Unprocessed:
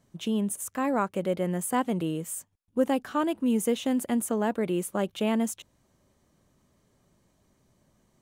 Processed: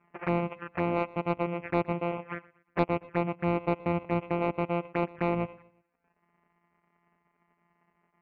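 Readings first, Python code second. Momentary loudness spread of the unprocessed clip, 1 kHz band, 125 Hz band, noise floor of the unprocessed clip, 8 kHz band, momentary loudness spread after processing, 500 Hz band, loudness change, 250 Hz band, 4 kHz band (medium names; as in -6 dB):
6 LU, 0.0 dB, +3.5 dB, -69 dBFS, under -40 dB, 5 LU, -1.5 dB, -2.5 dB, -5.0 dB, -10.5 dB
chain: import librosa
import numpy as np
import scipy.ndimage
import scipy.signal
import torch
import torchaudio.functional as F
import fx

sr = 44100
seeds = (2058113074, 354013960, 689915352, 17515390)

p1 = np.r_[np.sort(x[:len(x) // 256 * 256].reshape(-1, 256), axis=1).ravel(), x[len(x) // 256 * 256:]]
p2 = fx.highpass(p1, sr, hz=490.0, slope=6)
p3 = fx.dereverb_blind(p2, sr, rt60_s=0.75)
p4 = scipy.signal.sosfilt(scipy.signal.ellip(4, 1.0, 40, 2500.0, 'lowpass', fs=sr, output='sos'), p3)
p5 = fx.rider(p4, sr, range_db=4, speed_s=0.5)
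p6 = p4 + (p5 * librosa.db_to_amplitude(3.0))
p7 = 10.0 ** (-5.5 / 20.0) * np.tanh(p6 / 10.0 ** (-5.5 / 20.0))
p8 = fx.env_flanger(p7, sr, rest_ms=5.0, full_db=-26.0)
p9 = p8 + fx.echo_feedback(p8, sr, ms=120, feedback_pct=39, wet_db=-21.5, dry=0)
y = fx.doppler_dist(p9, sr, depth_ms=0.13)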